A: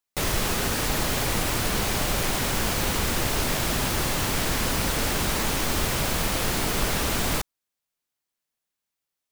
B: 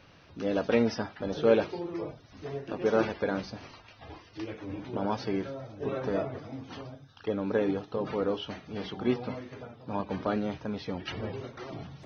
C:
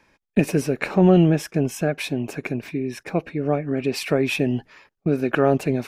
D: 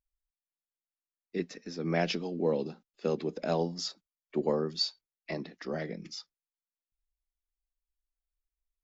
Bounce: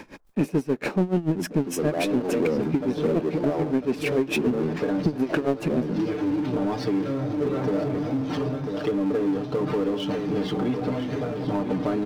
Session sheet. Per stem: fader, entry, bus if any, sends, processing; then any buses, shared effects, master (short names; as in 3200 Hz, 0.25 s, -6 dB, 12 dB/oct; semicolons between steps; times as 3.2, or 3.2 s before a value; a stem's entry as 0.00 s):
off
-2.5 dB, 1.60 s, no send, echo send -11 dB, compressor 2:1, threshold -42 dBFS, peak gain reduction 14 dB; comb 6.7 ms, depth 78%
0.0 dB, 0.00 s, no send, no echo send, dB-linear tremolo 6.9 Hz, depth 29 dB
+1.0 dB, 0.00 s, no send, no echo send, LPF 1300 Hz 24 dB/oct; photocell phaser 0.62 Hz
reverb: off
echo: echo 0.997 s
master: bell 270 Hz +10 dB 2.2 oct; power-law curve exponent 0.7; compressor 5:1, threshold -21 dBFS, peak gain reduction 15 dB